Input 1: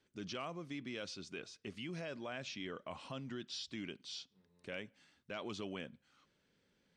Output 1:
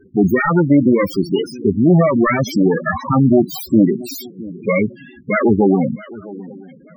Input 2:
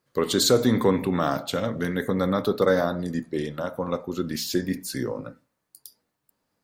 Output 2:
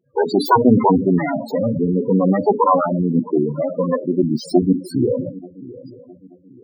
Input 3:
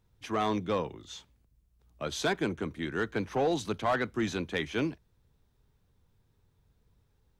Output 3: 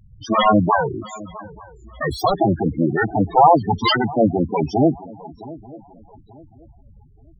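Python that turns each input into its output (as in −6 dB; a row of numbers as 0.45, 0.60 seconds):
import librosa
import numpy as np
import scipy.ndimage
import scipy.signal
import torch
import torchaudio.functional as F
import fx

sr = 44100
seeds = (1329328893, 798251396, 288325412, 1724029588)

p1 = fx.self_delay(x, sr, depth_ms=0.91)
p2 = fx.dynamic_eq(p1, sr, hz=4300.0, q=2.3, threshold_db=-51.0, ratio=4.0, max_db=3)
p3 = fx.echo_swing(p2, sr, ms=883, ratio=3, feedback_pct=32, wet_db=-19.0)
p4 = fx.spec_topn(p3, sr, count=8)
p5 = fx.rider(p4, sr, range_db=10, speed_s=2.0)
p6 = p4 + (p5 * librosa.db_to_amplitude(-1.0))
y = p6 * 10.0 ** (-2 / 20.0) / np.max(np.abs(p6))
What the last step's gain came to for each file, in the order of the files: +29.0, +6.0, +14.0 decibels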